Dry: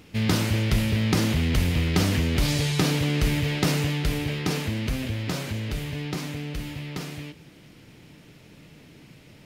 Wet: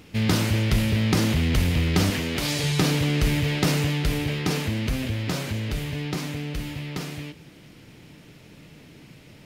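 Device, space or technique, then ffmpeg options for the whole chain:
parallel distortion: -filter_complex "[0:a]asettb=1/sr,asplit=3[link_01][link_02][link_03];[link_01]atrim=end=2.104[link_04];[link_02]atrim=start=2.1:end=2.64,asetpts=PTS-STARTPTS,afade=type=in:duration=0.004:curve=qsin,afade=type=out:start_time=0.536:duration=0.004:curve=qsin,highpass=frequency=280:poles=1[link_05];[link_03]atrim=start=2.636[link_06];[link_04][link_05]acrossfade=duration=0.004:curve1=hsin:curve2=qsin[link_07];[link_07][link_06]acrossfade=duration=0.004:curve1=qsin:curve2=hsin,asplit=2[link_08][link_09];[link_09]asoftclip=type=hard:threshold=-23.5dB,volume=-13dB[link_10];[link_08][link_10]amix=inputs=2:normalize=0"

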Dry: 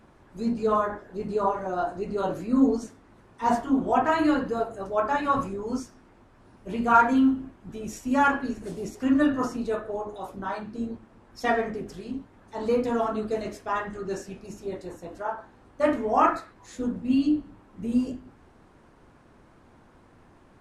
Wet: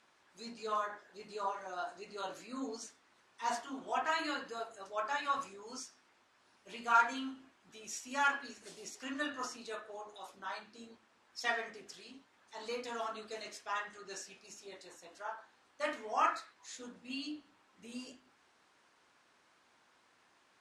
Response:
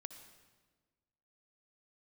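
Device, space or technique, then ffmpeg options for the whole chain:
piezo pickup straight into a mixer: -af "lowpass=5200,aderivative,volume=6.5dB"

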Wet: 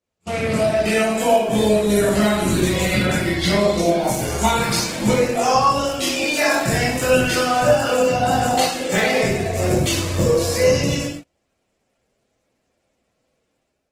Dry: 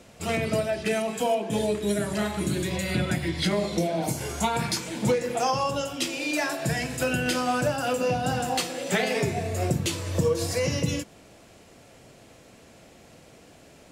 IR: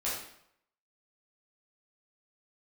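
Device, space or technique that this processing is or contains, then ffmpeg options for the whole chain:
speakerphone in a meeting room: -filter_complex "[1:a]atrim=start_sample=2205[link_01];[0:a][link_01]afir=irnorm=-1:irlink=0,dynaudnorm=framelen=190:gausssize=5:maxgain=9.5dB,agate=range=-30dB:threshold=-27dB:ratio=16:detection=peak,volume=-3dB" -ar 48000 -c:a libopus -b:a 16k

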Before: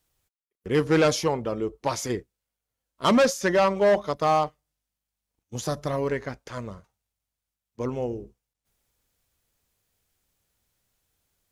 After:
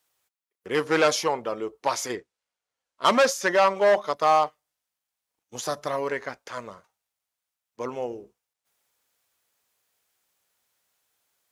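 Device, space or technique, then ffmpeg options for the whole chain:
filter by subtraction: -filter_complex "[0:a]asplit=2[link_01][link_02];[link_02]lowpass=960,volume=-1[link_03];[link_01][link_03]amix=inputs=2:normalize=0,asettb=1/sr,asplit=3[link_04][link_05][link_06];[link_04]atrim=end=2.154[link_07];[link_05]atrim=start=2.15:end=3.05,asetpts=PTS-STARTPTS,afade=type=in:duration=0.004:curve=qsin,afade=type=out:start_time=0.896:duration=0.004:curve=qsin,lowpass=7700[link_08];[link_06]atrim=start=3.046[link_09];[link_07][link_08]acrossfade=duration=0.004:curve1=hsin:curve2=qsin[link_10];[link_10][link_09]acrossfade=duration=0.004:curve1=qsin:curve2=hsin,volume=1.5dB"

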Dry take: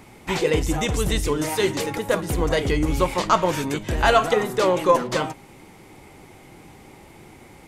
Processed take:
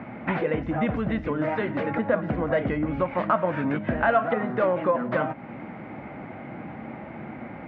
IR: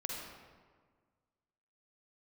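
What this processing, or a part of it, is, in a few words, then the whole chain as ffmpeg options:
bass amplifier: -af "acompressor=threshold=-33dB:ratio=3,highpass=frequency=76:width=0.5412,highpass=frequency=76:width=1.3066,equalizer=frequency=89:width_type=q:width=4:gain=-8,equalizer=frequency=230:width_type=q:width=4:gain=8,equalizer=frequency=400:width_type=q:width=4:gain=-8,equalizer=frequency=630:width_type=q:width=4:gain=7,equalizer=frequency=940:width_type=q:width=4:gain=-3,equalizer=frequency=1500:width_type=q:width=4:gain=4,lowpass=frequency=2100:width=0.5412,lowpass=frequency=2100:width=1.3066,volume=8dB"

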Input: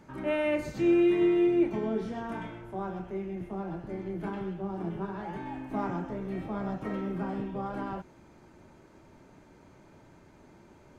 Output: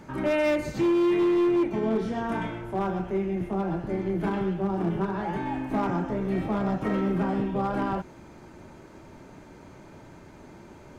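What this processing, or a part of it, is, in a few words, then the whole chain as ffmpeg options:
limiter into clipper: -af "alimiter=limit=-22.5dB:level=0:latency=1:release=488,asoftclip=type=hard:threshold=-27.5dB,volume=8dB"

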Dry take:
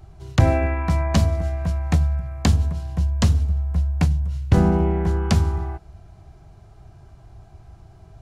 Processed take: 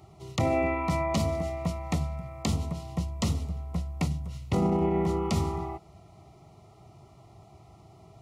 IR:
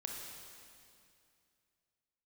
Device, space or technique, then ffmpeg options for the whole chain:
PA system with an anti-feedback notch: -af "highpass=150,asuperstop=centerf=1600:order=12:qfactor=3.8,alimiter=limit=-17.5dB:level=0:latency=1:release=31"

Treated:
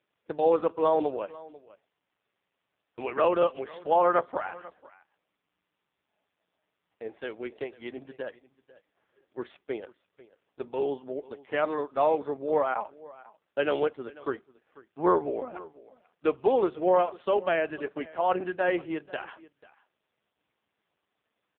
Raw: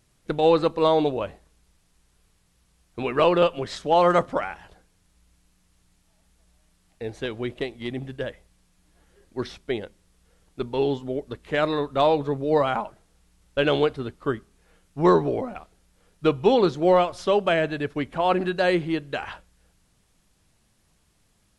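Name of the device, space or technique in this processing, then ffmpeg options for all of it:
satellite phone: -af "highpass=360,lowpass=3100,aecho=1:1:492:0.0944,volume=-2.5dB" -ar 8000 -c:a libopencore_amrnb -b:a 5150

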